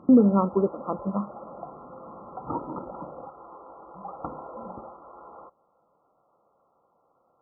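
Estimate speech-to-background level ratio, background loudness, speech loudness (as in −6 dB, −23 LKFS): 16.5 dB, −40.5 LKFS, −24.0 LKFS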